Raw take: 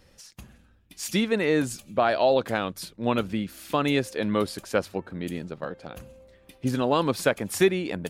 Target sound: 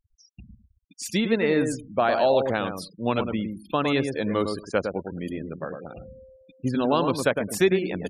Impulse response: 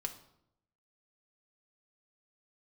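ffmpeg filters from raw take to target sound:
-filter_complex "[0:a]asplit=2[a][b];[b]adelay=107,lowpass=f=1.4k:p=1,volume=-5dB,asplit=2[c][d];[d]adelay=107,lowpass=f=1.4k:p=1,volume=0.19,asplit=2[e][f];[f]adelay=107,lowpass=f=1.4k:p=1,volume=0.19[g];[a][c][e][g]amix=inputs=4:normalize=0,afftfilt=real='re*gte(hypot(re,im),0.0141)':imag='im*gte(hypot(re,im),0.0141)':win_size=1024:overlap=0.75"

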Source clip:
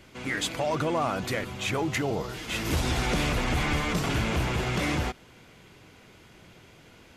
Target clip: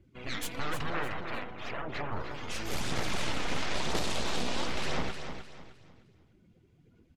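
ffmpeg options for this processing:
-filter_complex "[0:a]asplit=2[a][b];[b]volume=32dB,asoftclip=hard,volume=-32dB,volume=-7.5dB[c];[a][c]amix=inputs=2:normalize=0,asettb=1/sr,asplit=3[d][e][f];[d]atrim=end=3.754[g];[e]atrim=start=3.75:end=4.66,asetpts=PTS-STARTPTS,afade=t=in:d=0.004:c=qsin,afade=t=out:st=0.906:d=0.004:c=qsin,equalizer=f=250:t=o:w=1:g=-4,equalizer=f=500:t=o:w=1:g=11,equalizer=f=1k:t=o:w=1:g=-9,equalizer=f=2k:t=o:w=1:g=-5,equalizer=f=4k:t=o:w=1:g=9[h];[f]atrim=start=4.656[i];[g][h]acrossfade=d=0.004:c1=hsin:c2=qsin[j];[j][i]acrossfade=d=0.004:c1=qsin:c2=hsin,aeval=exprs='0.224*(cos(1*acos(clip(val(0)/0.224,-1,1)))-cos(1*PI/2))+0.0708*(cos(3*acos(clip(val(0)/0.224,-1,1)))-cos(3*PI/2))+0.0562*(cos(6*acos(clip(val(0)/0.224,-1,1)))-cos(6*PI/2))+0.0355*(cos(7*acos(clip(val(0)/0.224,-1,1)))-cos(7*PI/2))':c=same,asettb=1/sr,asplit=3[k][l][m];[k]atrim=end=0.904[n];[l]atrim=start=0.9:end=2.12,asetpts=PTS-STARTPTS,afade=t=in:d=0.004:c=qsin,afade=t=out:st=1.216:d=0.004:c=qsin,bass=f=250:g=-7,treble=f=4k:g=-12[o];[m]atrim=start=2.116[p];[n][o]acrossfade=d=0.004:c1=hsin:c2=qsin[q];[q][p]acrossfade=d=0.004:c1=qsin:c2=hsin,afftdn=nr=21:nf=-41,aphaser=in_gain=1:out_gain=1:delay=4.2:decay=0.34:speed=1:type=sinusoidal,aecho=1:1:306|612|918|1224:0.398|0.127|0.0408|0.013,volume=-8.5dB"

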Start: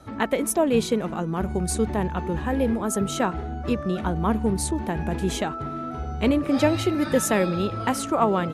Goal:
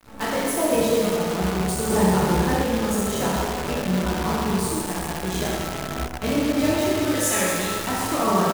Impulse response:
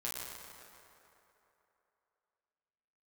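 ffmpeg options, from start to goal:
-filter_complex "[0:a]asettb=1/sr,asplit=3[a][b][c];[a]atrim=end=7.084[d];[b]atrim=start=7.08:end=7.77,asetpts=PTS-STARTPTS,afade=t=in:d=0.004:c=qsin,afade=t=out:st=0.686:d=0.004:c=qsin,tiltshelf=f=1.1k:g=-7.5[e];[c]atrim=start=7.766[f];[d][e]acrossfade=d=0.004:c1=hsin:c2=qsin[g];[g][f]acrossfade=d=0.004:c1=qsin:c2=hsin,aecho=1:1:43|76:0.188|0.596[h];[1:a]atrim=start_sample=2205[i];[h][i]afir=irnorm=-1:irlink=0,asettb=1/sr,asplit=3[j][k][l];[j]atrim=end=1.904[m];[k]atrim=start=1.9:end=2.62,asetpts=PTS-STARTPTS,afade=t=in:d=0.004:c=qsin,afade=t=out:st=0.716:d=0.004:c=qsin,acontrast=49[n];[l]atrim=start=2.616[o];[m][n]acrossfade=d=0.004:c1=hsin:c2=qsin[p];[p][o]acrossfade=d=0.004:c1=qsin:c2=hsin,asettb=1/sr,asplit=3[q][r][s];[q]atrim=end=4.824[t];[r]atrim=start=4.82:end=5.36,asetpts=PTS-STARTPTS,afade=t=in:d=0.004:c=qsin,afade=t=out:st=0.536:d=0.004:c=qsin,lowshelf=f=260:g=-7[u];[s]atrim=start=5.356[v];[t][u]acrossfade=d=0.004:c1=hsin:c2=qsin[w];[w][v]acrossfade=d=0.004:c1=qsin:c2=hsin,acrusher=bits=5:dc=4:mix=0:aa=0.000001,volume=-2.5dB"

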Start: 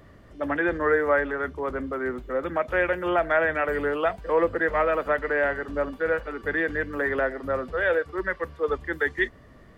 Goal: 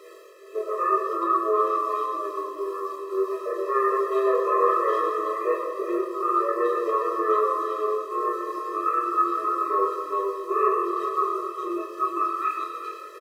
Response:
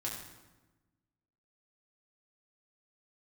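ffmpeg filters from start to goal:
-filter_complex "[0:a]highshelf=f=2.9k:g=-9,bandreject=f=60:t=h:w=6,bandreject=f=120:t=h:w=6,bandreject=f=180:t=h:w=6,bandreject=f=240:t=h:w=6,bandreject=f=300:t=h:w=6,bandreject=f=360:t=h:w=6,bandreject=f=420:t=h:w=6,bandreject=f=480:t=h:w=6,bandreject=f=540:t=h:w=6,areverse,acompressor=mode=upward:threshold=-34dB:ratio=2.5,areverse,aeval=exprs='val(0)*gte(abs(val(0)),0.00501)':c=same,acrossover=split=830[a][b];[a]acompressor=threshold=-36dB:ratio=6[c];[c][b]amix=inputs=2:normalize=0,asplit=2[d][e];[e]adelay=17,volume=-5dB[f];[d][f]amix=inputs=2:normalize=0,asplit=2[g][h];[h]adelay=300,highpass=300,lowpass=3.4k,asoftclip=type=hard:threshold=-21.5dB,volume=-7dB[i];[g][i]amix=inputs=2:normalize=0[j];[1:a]atrim=start_sample=2205[k];[j][k]afir=irnorm=-1:irlink=0,asetrate=32667,aresample=44100,afftfilt=real='re*eq(mod(floor(b*sr/1024/340),2),1)':imag='im*eq(mod(floor(b*sr/1024/340),2),1)':win_size=1024:overlap=0.75,volume=5dB"

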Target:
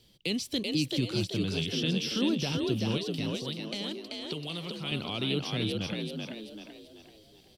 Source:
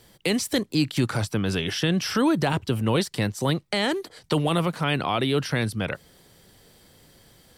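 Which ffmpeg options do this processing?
-filter_complex "[0:a]firequalizer=gain_entry='entry(260,0);entry(790,-10);entry(2600,-10);entry(8000,-28)':delay=0.05:min_phase=1,asplit=2[a][b];[b]adelay=300,highpass=300,lowpass=3.4k,asoftclip=type=hard:threshold=-22.5dB,volume=-27dB[c];[a][c]amix=inputs=2:normalize=0,aexciter=amount=8.5:drive=4.4:freq=2.6k,asettb=1/sr,asplit=3[d][e][f];[d]atrim=end=2.974[g];[e]atrim=start=2.97:end=4.92,asetpts=PTS-STARTPTS,afade=t=in:d=0.004:c=qsin,afade=t=out:st=1.946:d=0.004:c=qsin,acrossover=split=960|6300[h][i][j];[h]acompressor=threshold=-31dB:ratio=4[k];[i]acompressor=threshold=-29dB:ratio=4[l];[j]acompressor=threshold=-48dB:ratio=4[m];[k][l][m]amix=inputs=3:normalize=0[n];[f]atrim=start=4.916[o];[g][n]acrossfade=d=0.004:c1=hsin:c2=qsin[p];[p][o]acrossfade=d=0.004:c1=qsin:c2=hsin,asplit=2[q][r];[r]asplit=5[s][t][u][v][w];[s]adelay=385,afreqshift=52,volume=-3dB[x];[t]adelay=770,afreqshift=104,volume=-10.7dB[y];[u]adelay=1155,afreqshift=156,volume=-18.5dB[z];[v]adelay=1540,afreqshift=208,volume=-26.2dB[aa];[w]adelay=1925,afreqshift=260,volume=-34dB[ab];[x][y][z][aa][ab]amix=inputs=5:normalize=0[ac];[q][ac]amix=inputs=2:normalize=0,volume=-7dB"

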